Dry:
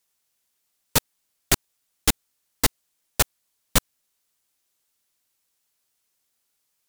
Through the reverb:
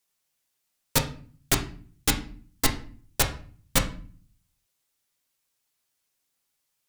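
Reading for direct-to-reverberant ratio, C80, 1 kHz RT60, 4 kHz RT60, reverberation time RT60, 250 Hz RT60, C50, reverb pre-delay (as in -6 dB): 2.5 dB, 16.0 dB, 0.40 s, 0.35 s, 0.45 s, 0.70 s, 11.0 dB, 6 ms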